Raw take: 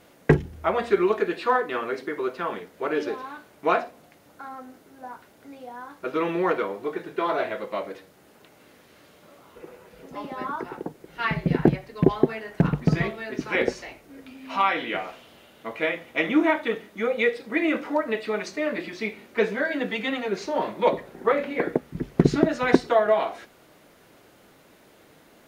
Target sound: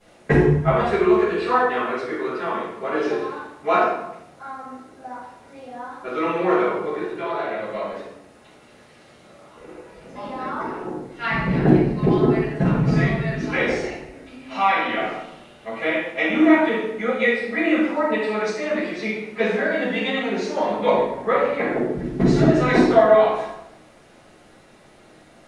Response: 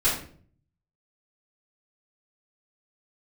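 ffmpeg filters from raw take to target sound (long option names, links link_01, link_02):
-filter_complex "[0:a]asettb=1/sr,asplit=3[link_01][link_02][link_03];[link_01]atrim=end=7.094[link_04];[link_02]atrim=start=7.09:end=7.92,asetpts=PTS-STARTPTS,afade=type=in:duration=0.004:curve=qsin,afade=type=out:start_time=0.826:duration=0.004:curve=qsin,acrossover=split=300|2700[link_05][link_06][link_07];[link_05]acompressor=threshold=-44dB:ratio=4[link_08];[link_06]acompressor=threshold=-28dB:ratio=4[link_09];[link_07]acompressor=threshold=-49dB:ratio=4[link_10];[link_08][link_09][link_10]amix=inputs=3:normalize=0[link_11];[link_03]atrim=start=7.916[link_12];[link_04][link_11]acrossfade=duration=0.004:curve1=hsin:curve2=qsin[link_13];[link_13][link_12]acrossfade=duration=0.004:curve1=qsin:curve2=hsin[link_14];[1:a]atrim=start_sample=2205,asetrate=22050,aresample=44100[link_15];[link_14][link_15]afir=irnorm=-1:irlink=0,volume=-14dB"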